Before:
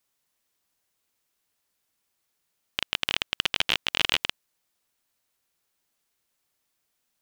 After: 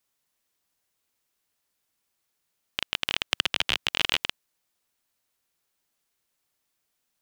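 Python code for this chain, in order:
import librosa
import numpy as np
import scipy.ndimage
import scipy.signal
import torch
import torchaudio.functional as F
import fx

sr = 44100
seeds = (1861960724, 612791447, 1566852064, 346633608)

y = fx.band_squash(x, sr, depth_pct=100, at=(3.31, 3.88))
y = y * 10.0 ** (-1.0 / 20.0)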